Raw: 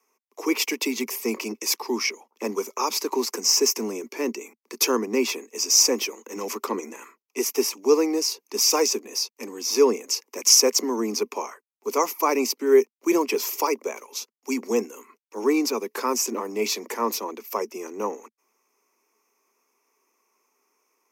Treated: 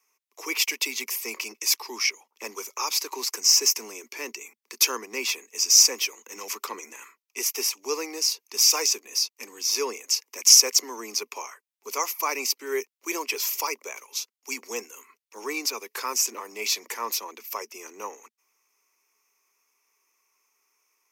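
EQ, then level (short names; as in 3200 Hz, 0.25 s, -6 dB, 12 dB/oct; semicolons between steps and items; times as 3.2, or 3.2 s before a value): tilt shelf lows -9.5 dB, about 1200 Hz; dynamic EQ 210 Hz, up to -6 dB, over -46 dBFS, Q 1.2; tone controls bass -2 dB, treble -4 dB; -3.5 dB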